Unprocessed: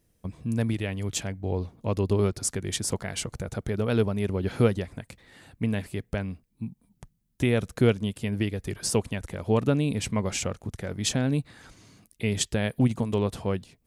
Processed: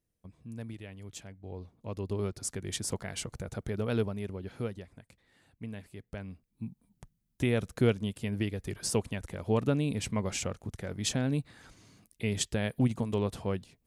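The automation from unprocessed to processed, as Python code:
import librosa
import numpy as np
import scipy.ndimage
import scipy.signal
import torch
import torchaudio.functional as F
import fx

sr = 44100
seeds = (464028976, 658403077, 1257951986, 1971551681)

y = fx.gain(x, sr, db=fx.line((1.36, -15.0), (2.76, -5.5), (3.96, -5.5), (4.53, -14.0), (5.95, -14.0), (6.66, -4.5)))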